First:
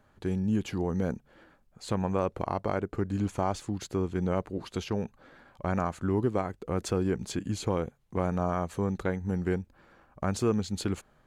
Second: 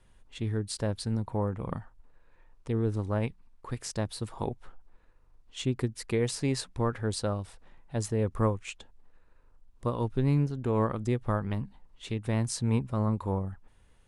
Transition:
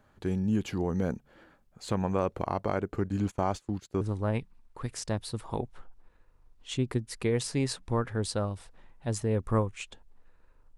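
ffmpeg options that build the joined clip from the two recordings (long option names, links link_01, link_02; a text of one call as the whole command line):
ffmpeg -i cue0.wav -i cue1.wav -filter_complex "[0:a]asplit=3[link_01][link_02][link_03];[link_01]afade=type=out:start_time=3.05:duration=0.02[link_04];[link_02]agate=range=-19dB:threshold=-39dB:ratio=16:release=100:detection=peak,afade=type=in:start_time=3.05:duration=0.02,afade=type=out:start_time=4.01:duration=0.02[link_05];[link_03]afade=type=in:start_time=4.01:duration=0.02[link_06];[link_04][link_05][link_06]amix=inputs=3:normalize=0,apad=whole_dur=10.77,atrim=end=10.77,atrim=end=4.012[link_07];[1:a]atrim=start=2.888:end=9.65[link_08];[link_07][link_08]acrossfade=duration=0.004:curve1=hsin:curve2=hsin" out.wav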